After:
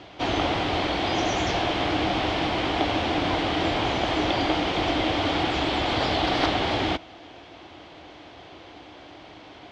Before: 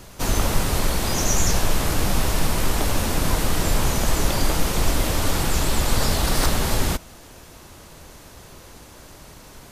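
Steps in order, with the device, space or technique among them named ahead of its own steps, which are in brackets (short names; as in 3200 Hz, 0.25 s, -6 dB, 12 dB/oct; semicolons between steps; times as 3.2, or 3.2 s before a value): guitar cabinet (speaker cabinet 100–4300 Hz, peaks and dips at 150 Hz -7 dB, 220 Hz -6 dB, 310 Hz +10 dB, 730 Hz +10 dB, 2200 Hz +5 dB, 3200 Hz +8 dB); gain -2 dB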